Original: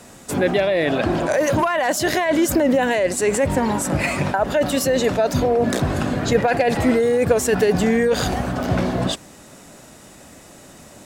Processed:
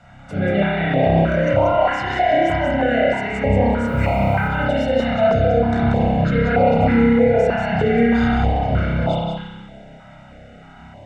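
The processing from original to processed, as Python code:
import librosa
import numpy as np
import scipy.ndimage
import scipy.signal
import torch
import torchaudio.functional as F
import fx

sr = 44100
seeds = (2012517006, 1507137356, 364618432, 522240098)

p1 = scipy.signal.sosfilt(scipy.signal.butter(2, 2400.0, 'lowpass', fs=sr, output='sos'), x)
p2 = p1 + 0.69 * np.pad(p1, (int(1.4 * sr / 1000.0), 0))[:len(p1)]
p3 = fx.quant_dither(p2, sr, seeds[0], bits=8, dither='none', at=(3.87, 4.48))
p4 = p3 + fx.echo_single(p3, sr, ms=185, db=-5.5, dry=0)
p5 = fx.rev_spring(p4, sr, rt60_s=1.2, pass_ms=(30,), chirp_ms=50, drr_db=-7.0)
p6 = fx.filter_held_notch(p5, sr, hz=3.2, low_hz=440.0, high_hz=1700.0)
y = p6 * 10.0 ** (-5.0 / 20.0)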